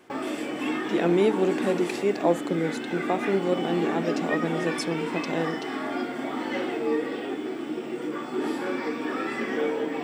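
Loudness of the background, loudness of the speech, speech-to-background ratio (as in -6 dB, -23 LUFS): -30.0 LUFS, -27.5 LUFS, 2.5 dB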